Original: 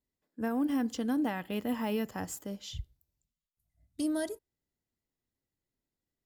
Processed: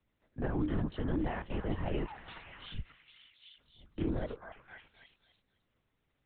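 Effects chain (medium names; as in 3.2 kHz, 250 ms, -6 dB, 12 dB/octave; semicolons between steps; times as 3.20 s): de-esser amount 95%; 2.07–2.58 s: differentiator; sample-and-hold 4×; distance through air 81 m; on a send: repeats whose band climbs or falls 265 ms, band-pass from 1.2 kHz, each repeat 0.7 oct, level -4.5 dB; on the sum: LPC vocoder at 8 kHz whisper; three bands compressed up and down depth 40%; trim -1.5 dB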